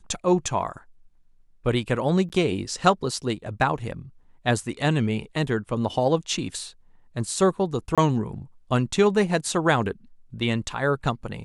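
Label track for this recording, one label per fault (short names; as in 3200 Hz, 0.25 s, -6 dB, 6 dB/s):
2.290000	2.300000	gap 8.8 ms
7.950000	7.980000	gap 26 ms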